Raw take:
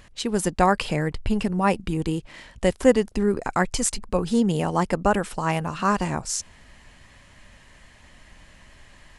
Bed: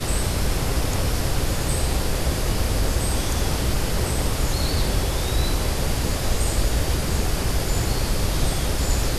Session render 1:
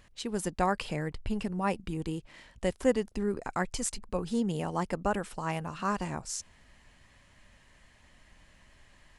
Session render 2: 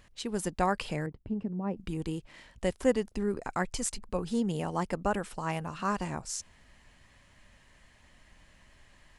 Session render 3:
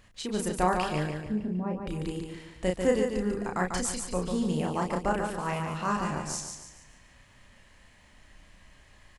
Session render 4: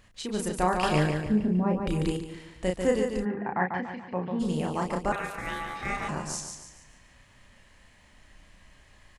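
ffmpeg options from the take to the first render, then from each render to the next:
ffmpeg -i in.wav -af "volume=-9dB" out.wav
ffmpeg -i in.wav -filter_complex "[0:a]asettb=1/sr,asplit=3[link_01][link_02][link_03];[link_01]atrim=end=1.064[link_04];[link_02]atrim=start=1.06:end=1.77,asetpts=PTS-STARTPTS,afade=type=in:duration=0.004:curve=qsin,afade=type=out:start_time=0.706:duration=0.004:curve=qsin,bandpass=frequency=230:width_type=q:width=0.8[link_05];[link_03]atrim=start=1.766[link_06];[link_04][link_05]acrossfade=duration=0.004:curve1=hsin:curve2=qsin[link_07];[link_07][link_06]acrossfade=duration=0.004:curve1=qsin:curve2=hsin" out.wav
ffmpeg -i in.wav -filter_complex "[0:a]asplit=2[link_01][link_02];[link_02]adelay=33,volume=-3.5dB[link_03];[link_01][link_03]amix=inputs=2:normalize=0,asplit=2[link_04][link_05];[link_05]aecho=0:1:144|288|432|576|720:0.531|0.218|0.0892|0.0366|0.015[link_06];[link_04][link_06]amix=inputs=2:normalize=0" out.wav
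ffmpeg -i in.wav -filter_complex "[0:a]asettb=1/sr,asplit=3[link_01][link_02][link_03];[link_01]atrim=end=0.834[link_04];[link_02]atrim=start=0.83:end=2.17,asetpts=PTS-STARTPTS,afade=type=in:duration=0.004:curve=qsin,afade=type=out:start_time=1.336:duration=0.004:curve=qsin,acontrast=53[link_05];[link_03]atrim=start=2.166[link_06];[link_04][link_05]acrossfade=duration=0.004:curve1=hsin:curve2=qsin[link_07];[link_07][link_06]acrossfade=duration=0.004:curve1=qsin:curve2=hsin,asplit=3[link_08][link_09][link_10];[link_08]afade=type=out:start_time=3.24:duration=0.02[link_11];[link_09]highpass=frequency=110:width=0.5412,highpass=frequency=110:width=1.3066,equalizer=frequency=450:width_type=q:width=4:gain=-5,equalizer=frequency=830:width_type=q:width=4:gain=8,equalizer=frequency=1300:width_type=q:width=4:gain=-7,equalizer=frequency=1800:width_type=q:width=4:gain=7,lowpass=frequency=2400:width=0.5412,lowpass=frequency=2400:width=1.3066,afade=type=in:start_time=3.24:duration=0.02,afade=type=out:start_time=4.39:duration=0.02[link_12];[link_10]afade=type=in:start_time=4.39:duration=0.02[link_13];[link_11][link_12][link_13]amix=inputs=3:normalize=0,asettb=1/sr,asplit=3[link_14][link_15][link_16];[link_14]atrim=end=5.124[link_17];[link_15]atrim=start=5.12:end=6.09,asetpts=PTS-STARTPTS,afade=type=in:duration=0.004:curve=qsin,afade=type=out:start_time=0.966:duration=0.004:curve=qsin,aeval=exprs='val(0)*sin(2*PI*1000*n/s)':channel_layout=same[link_18];[link_16]atrim=start=6.086[link_19];[link_17][link_18]acrossfade=duration=0.004:curve1=hsin:curve2=qsin[link_20];[link_20][link_19]acrossfade=duration=0.004:curve1=qsin:curve2=hsin" out.wav

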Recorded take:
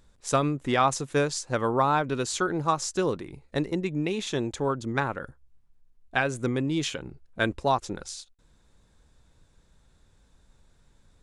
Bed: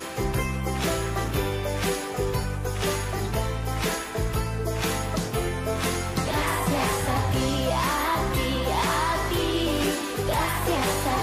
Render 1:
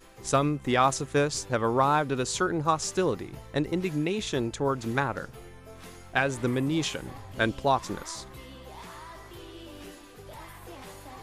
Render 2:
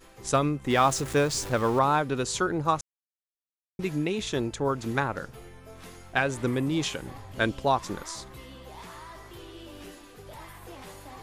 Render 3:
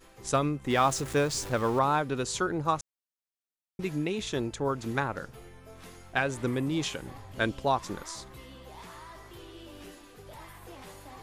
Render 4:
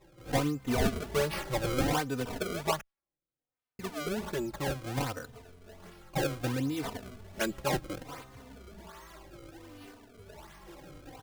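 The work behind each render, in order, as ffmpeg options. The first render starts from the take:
ffmpeg -i in.wav -i bed.wav -filter_complex "[1:a]volume=-20dB[link_01];[0:a][link_01]amix=inputs=2:normalize=0" out.wav
ffmpeg -i in.wav -filter_complex "[0:a]asettb=1/sr,asplit=3[link_01][link_02][link_03];[link_01]atrim=end=0.704[link_04];[link_02]atrim=start=0.7:end=1.79,asetpts=PTS-STARTPTS,afade=type=in:duration=0.004:curve=qsin,afade=type=out:start_time=1.086:duration=0.004:curve=qsin,aeval=exprs='val(0)+0.5*0.02*sgn(val(0))':channel_layout=same[link_05];[link_03]atrim=start=1.786[link_06];[link_04][link_05]acrossfade=duration=0.004:curve1=hsin:curve2=qsin[link_07];[link_07][link_06]acrossfade=duration=0.004:curve1=qsin:curve2=hsin,asplit=3[link_08][link_09][link_10];[link_08]atrim=end=2.81,asetpts=PTS-STARTPTS,afade=type=out:start_time=2.806:duration=0.004:curve=hsin[link_11];[link_09]atrim=start=2.81:end=3.79,asetpts=PTS-STARTPTS,volume=0[link_12];[link_10]atrim=start=3.79,asetpts=PTS-STARTPTS,afade=type=in:duration=0.004:curve=hsin[link_13];[link_11][link_12][link_13]concat=n=3:v=0:a=1" out.wav
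ffmpeg -i in.wav -af "volume=-2.5dB" out.wav
ffmpeg -i in.wav -filter_complex "[0:a]acrusher=samples=28:mix=1:aa=0.000001:lfo=1:lforange=44.8:lforate=1.3,asplit=2[link_01][link_02];[link_02]adelay=3.2,afreqshift=-0.65[link_03];[link_01][link_03]amix=inputs=2:normalize=1" out.wav

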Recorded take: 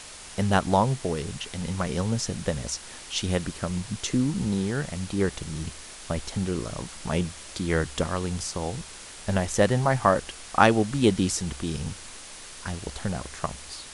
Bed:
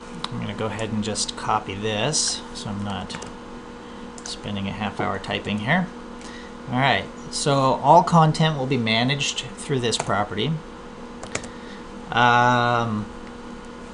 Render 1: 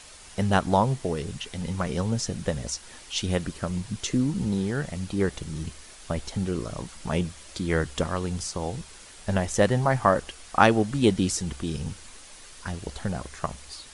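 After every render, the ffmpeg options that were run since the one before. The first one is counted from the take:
ffmpeg -i in.wav -af "afftdn=noise_reduction=6:noise_floor=-43" out.wav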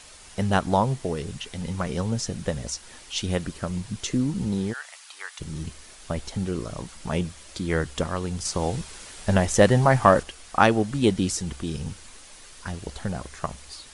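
ffmpeg -i in.wav -filter_complex "[0:a]asplit=3[link_01][link_02][link_03];[link_01]afade=type=out:start_time=4.72:duration=0.02[link_04];[link_02]highpass=frequency=980:width=0.5412,highpass=frequency=980:width=1.3066,afade=type=in:start_time=4.72:duration=0.02,afade=type=out:start_time=5.39:duration=0.02[link_05];[link_03]afade=type=in:start_time=5.39:duration=0.02[link_06];[link_04][link_05][link_06]amix=inputs=3:normalize=0,asettb=1/sr,asplit=3[link_07][link_08][link_09];[link_07]atrim=end=8.454[link_10];[link_08]atrim=start=8.45:end=10.23,asetpts=PTS-STARTPTS,afade=type=in:duration=0.004:curve=qsin,afade=type=out:start_time=1.776:duration=0.004:curve=qsin,acontrast=21[link_11];[link_09]atrim=start=10.226[link_12];[link_10][link_11]acrossfade=duration=0.004:curve1=hsin:curve2=qsin[link_13];[link_13][link_12]acrossfade=duration=0.004:curve1=qsin:curve2=hsin" out.wav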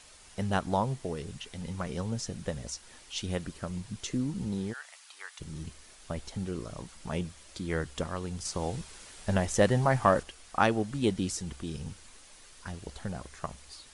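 ffmpeg -i in.wav -af "volume=-7dB" out.wav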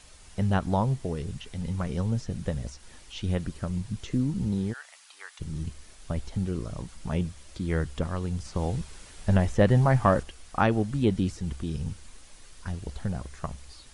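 ffmpeg -i in.wav -filter_complex "[0:a]acrossover=split=3500[link_01][link_02];[link_02]acompressor=threshold=-47dB:ratio=4:attack=1:release=60[link_03];[link_01][link_03]amix=inputs=2:normalize=0,lowshelf=frequency=190:gain=10.5" out.wav

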